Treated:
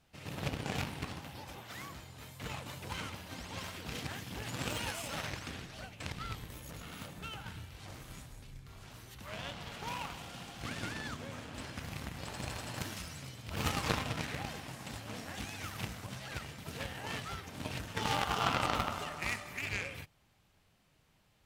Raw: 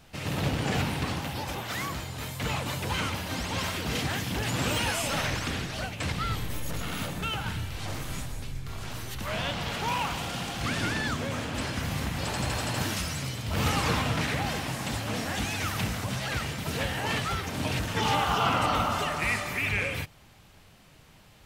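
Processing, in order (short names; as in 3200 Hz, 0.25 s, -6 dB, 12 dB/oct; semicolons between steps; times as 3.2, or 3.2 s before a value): rattling part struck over -25 dBFS, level -23 dBFS; added harmonics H 3 -11 dB, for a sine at -12.5 dBFS; gain +1.5 dB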